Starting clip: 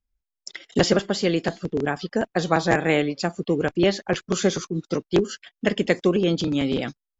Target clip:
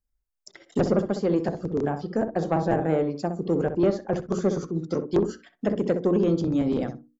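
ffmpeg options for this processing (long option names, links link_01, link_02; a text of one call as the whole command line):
ffmpeg -i in.wav -filter_complex "[0:a]equalizer=frequency=3000:width=1.4:gain=-8.5,bandreject=frequency=60:width_type=h:width=6,bandreject=frequency=120:width_type=h:width=6,bandreject=frequency=180:width_type=h:width=6,bandreject=frequency=240:width_type=h:width=6,bandreject=frequency=300:width_type=h:width=6,bandreject=frequency=360:width_type=h:width=6,bandreject=frequency=420:width_type=h:width=6,bandreject=frequency=480:width_type=h:width=6,acrossover=split=1100[link_01][link_02];[link_02]acompressor=threshold=-45dB:ratio=5[link_03];[link_01][link_03]amix=inputs=2:normalize=0,asoftclip=type=tanh:threshold=-13dB,asplit=2[link_04][link_05];[link_05]adelay=63,lowpass=frequency=1000:poles=1,volume=-7dB,asplit=2[link_06][link_07];[link_07]adelay=63,lowpass=frequency=1000:poles=1,volume=0.19,asplit=2[link_08][link_09];[link_09]adelay=63,lowpass=frequency=1000:poles=1,volume=0.19[link_10];[link_04][link_06][link_08][link_10]amix=inputs=4:normalize=0" out.wav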